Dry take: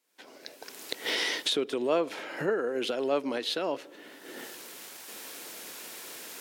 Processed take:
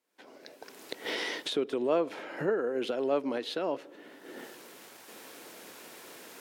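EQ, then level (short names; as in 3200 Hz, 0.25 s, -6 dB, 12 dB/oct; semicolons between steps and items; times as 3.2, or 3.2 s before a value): high shelf 2100 Hz -9 dB; 0.0 dB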